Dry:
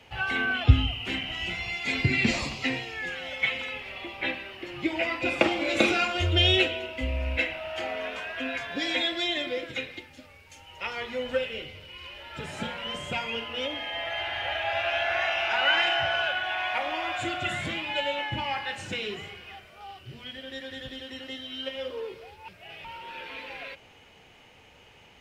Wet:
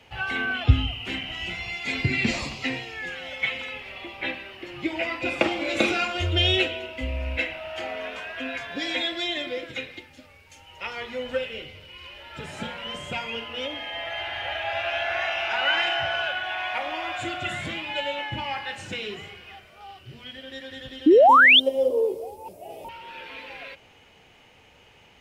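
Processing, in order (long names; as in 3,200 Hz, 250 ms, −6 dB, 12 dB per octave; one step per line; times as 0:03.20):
0:21.28–0:22.89: drawn EQ curve 160 Hz 0 dB, 250 Hz +10 dB, 570 Hz +14 dB, 840 Hz +8 dB, 1,500 Hz −17 dB, 3,900 Hz −7 dB, 9,600 Hz +15 dB
0:21.06–0:21.60: sound drawn into the spectrogram rise 280–3,700 Hz −13 dBFS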